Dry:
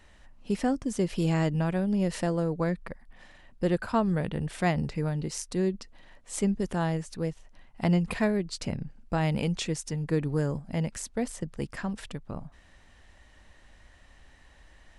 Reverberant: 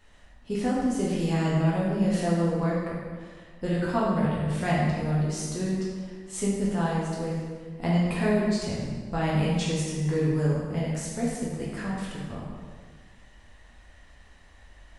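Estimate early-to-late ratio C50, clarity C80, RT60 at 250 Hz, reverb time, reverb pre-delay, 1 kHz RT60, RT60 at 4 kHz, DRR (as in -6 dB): -0.5 dB, 1.5 dB, 1.7 s, 1.6 s, 6 ms, 1.6 s, 1.3 s, -6.5 dB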